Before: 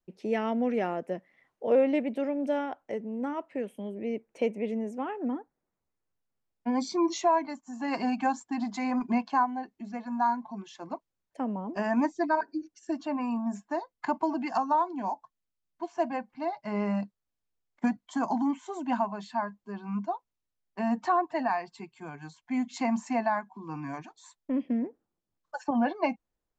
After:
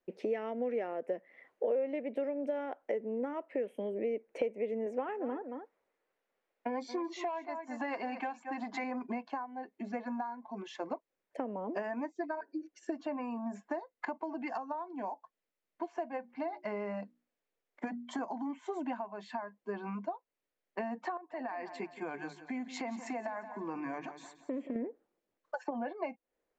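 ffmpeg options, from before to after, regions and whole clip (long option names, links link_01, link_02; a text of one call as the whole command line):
ffmpeg -i in.wav -filter_complex "[0:a]asettb=1/sr,asplit=3[link_01][link_02][link_03];[link_01]atrim=end=4.864[link_04];[link_02]atrim=start=4.86:end=8.84,asetpts=PTS-STARTPTS,afade=type=in:duration=0.004:curve=qsin,afade=type=out:start_time=3.976:duration=0.004:curve=qsin,aecho=1:1:225:0.188,atrim=end_sample=175518,asplit=2[link_05][link_06];[link_06]highpass=frequency=720:poles=1,volume=11dB,asoftclip=type=tanh:threshold=-14.5dB[link_07];[link_05][link_07]amix=inputs=2:normalize=0,lowpass=frequency=3100:poles=1,volume=-6dB[link_08];[link_03]atrim=start=8.836[link_09];[link_04][link_08]acrossfade=duration=0.004:curve1=hsin:curve2=qsin[link_10];[link_10][link_09]acrossfade=duration=0.004:curve1=qsin:curve2=hsin,asettb=1/sr,asplit=3[link_11][link_12][link_13];[link_11]atrim=end=16.174[link_14];[link_12]atrim=start=16.17:end=18.19,asetpts=PTS-STARTPTS,afade=type=in:duration=0.004:curve=qsin,afade=type=out:start_time=2.016:duration=0.004:curve=qsin,bandreject=frequency=60:width_type=h:width=6,bandreject=frequency=120:width_type=h:width=6,bandreject=frequency=180:width_type=h:width=6,bandreject=frequency=240:width_type=h:width=6,bandreject=frequency=300:width_type=h:width=6,bandreject=frequency=360:width_type=h:width=6,acompressor=threshold=-35dB:ratio=1.5:attack=3.2:release=140:knee=1:detection=peak[link_15];[link_13]atrim=start=18.186[link_16];[link_14][link_15]acrossfade=duration=0.004:curve1=hsin:curve2=qsin[link_17];[link_17][link_16]acrossfade=duration=0.004:curve1=qsin:curve2=hsin,asettb=1/sr,asplit=3[link_18][link_19][link_20];[link_18]atrim=end=21.174[link_21];[link_19]atrim=start=21.17:end=24.76,asetpts=PTS-STARTPTS,afade=type=in:duration=0.004:curve=qsin,afade=type=out:start_time=3.586:duration=0.004:curve=qsin,acompressor=threshold=-36dB:ratio=5:attack=3.2:release=140:knee=1:detection=peak,bandreject=frequency=50:width_type=h:width=6,bandreject=frequency=100:width_type=h:width=6,bandreject=frequency=150:width_type=h:width=6,aecho=1:1:175|350|525|700:0.2|0.0778|0.0303|0.0118,atrim=end_sample=158319[link_22];[link_20]atrim=start=24.756[link_23];[link_21][link_22]acrossfade=duration=0.004:curve1=hsin:curve2=qsin[link_24];[link_24][link_23]acrossfade=duration=0.004:curve1=qsin:curve2=hsin,bass=frequency=250:gain=-10,treble=frequency=4000:gain=-5,acompressor=threshold=-41dB:ratio=12,equalizer=frequency=250:width_type=o:width=1:gain=5,equalizer=frequency=500:width_type=o:width=1:gain=11,equalizer=frequency=2000:width_type=o:width=1:gain=7" out.wav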